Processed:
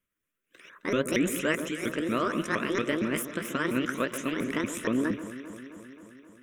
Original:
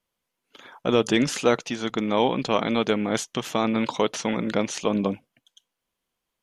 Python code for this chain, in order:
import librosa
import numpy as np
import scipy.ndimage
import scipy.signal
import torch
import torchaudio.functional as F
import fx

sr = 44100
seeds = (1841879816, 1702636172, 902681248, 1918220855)

y = fx.pitch_ramps(x, sr, semitones=9.5, every_ms=232)
y = fx.fixed_phaser(y, sr, hz=1900.0, stages=4)
y = fx.echo_alternate(y, sr, ms=132, hz=1400.0, feedback_pct=81, wet_db=-10.5)